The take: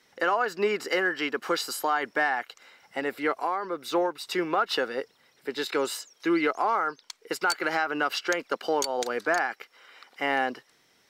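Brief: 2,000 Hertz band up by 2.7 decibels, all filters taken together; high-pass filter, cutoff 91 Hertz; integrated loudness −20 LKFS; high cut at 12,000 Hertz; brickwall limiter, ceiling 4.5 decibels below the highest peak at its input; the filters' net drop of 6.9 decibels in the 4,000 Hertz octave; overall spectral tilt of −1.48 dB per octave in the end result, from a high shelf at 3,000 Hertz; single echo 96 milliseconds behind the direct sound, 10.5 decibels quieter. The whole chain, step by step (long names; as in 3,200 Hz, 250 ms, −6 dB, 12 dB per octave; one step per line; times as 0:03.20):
high-pass filter 91 Hz
low-pass filter 12,000 Hz
parametric band 2,000 Hz +7 dB
high-shelf EQ 3,000 Hz −7.5 dB
parametric band 4,000 Hz −6.5 dB
brickwall limiter −16.5 dBFS
single-tap delay 96 ms −10.5 dB
level +8.5 dB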